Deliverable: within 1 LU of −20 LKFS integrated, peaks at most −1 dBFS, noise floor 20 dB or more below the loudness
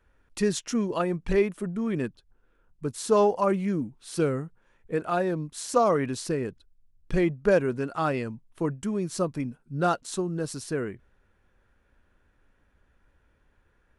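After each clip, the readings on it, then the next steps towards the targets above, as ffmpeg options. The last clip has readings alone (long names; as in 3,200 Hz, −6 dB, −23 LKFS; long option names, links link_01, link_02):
integrated loudness −28.0 LKFS; sample peak −9.5 dBFS; target loudness −20.0 LKFS
→ -af "volume=8dB"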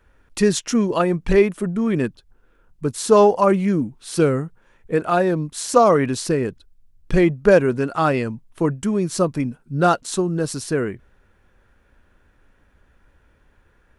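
integrated loudness −20.0 LKFS; sample peak −1.5 dBFS; background noise floor −59 dBFS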